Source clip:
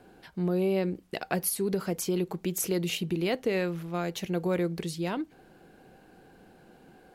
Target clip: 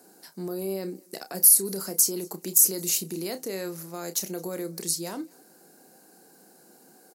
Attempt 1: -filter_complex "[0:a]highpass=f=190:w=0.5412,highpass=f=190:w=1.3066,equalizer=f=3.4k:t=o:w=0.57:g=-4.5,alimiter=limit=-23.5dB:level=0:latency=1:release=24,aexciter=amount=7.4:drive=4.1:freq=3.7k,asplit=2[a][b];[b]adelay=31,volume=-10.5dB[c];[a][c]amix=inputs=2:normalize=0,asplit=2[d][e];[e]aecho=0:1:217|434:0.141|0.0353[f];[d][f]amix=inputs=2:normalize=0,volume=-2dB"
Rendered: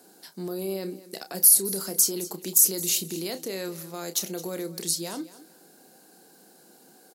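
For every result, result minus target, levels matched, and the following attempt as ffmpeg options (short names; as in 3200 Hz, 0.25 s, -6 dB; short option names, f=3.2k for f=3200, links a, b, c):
echo-to-direct +10.5 dB; 4000 Hz band +3.0 dB
-filter_complex "[0:a]highpass=f=190:w=0.5412,highpass=f=190:w=1.3066,equalizer=f=3.4k:t=o:w=0.57:g=-4.5,alimiter=limit=-23.5dB:level=0:latency=1:release=24,aexciter=amount=7.4:drive=4.1:freq=3.7k,asplit=2[a][b];[b]adelay=31,volume=-10.5dB[c];[a][c]amix=inputs=2:normalize=0,asplit=2[d][e];[e]aecho=0:1:217|434:0.0422|0.0105[f];[d][f]amix=inputs=2:normalize=0,volume=-2dB"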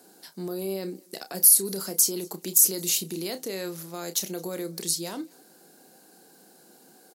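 4000 Hz band +3.0 dB
-filter_complex "[0:a]highpass=f=190:w=0.5412,highpass=f=190:w=1.3066,equalizer=f=3.4k:t=o:w=0.57:g=-13,alimiter=limit=-23.5dB:level=0:latency=1:release=24,aexciter=amount=7.4:drive=4.1:freq=3.7k,asplit=2[a][b];[b]adelay=31,volume=-10.5dB[c];[a][c]amix=inputs=2:normalize=0,asplit=2[d][e];[e]aecho=0:1:217|434:0.0422|0.0105[f];[d][f]amix=inputs=2:normalize=0,volume=-2dB"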